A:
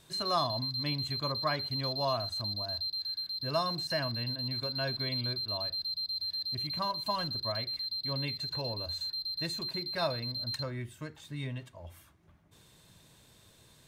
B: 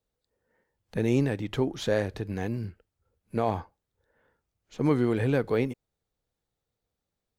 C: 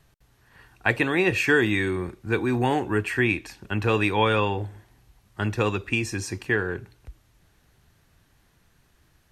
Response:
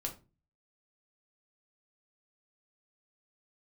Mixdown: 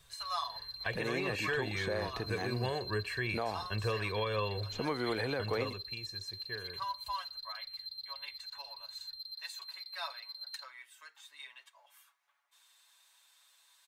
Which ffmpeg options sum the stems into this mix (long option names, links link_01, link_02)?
-filter_complex "[0:a]highpass=frequency=930:width=0.5412,highpass=frequency=930:width=1.3066,aecho=1:1:7.1:0.7,volume=-5dB[link_01];[1:a]acrossover=split=540|2500[link_02][link_03][link_04];[link_02]acompressor=threshold=-42dB:ratio=4[link_05];[link_03]acompressor=threshold=-31dB:ratio=4[link_06];[link_04]acompressor=threshold=-51dB:ratio=4[link_07];[link_05][link_06][link_07]amix=inputs=3:normalize=0,volume=3dB[link_08];[2:a]aecho=1:1:1.8:0.8,volume=-10dB,afade=type=out:start_time=5.24:duration=0.7:silence=0.251189[link_09];[link_01][link_08][link_09]amix=inputs=3:normalize=0,alimiter=limit=-23.5dB:level=0:latency=1:release=295"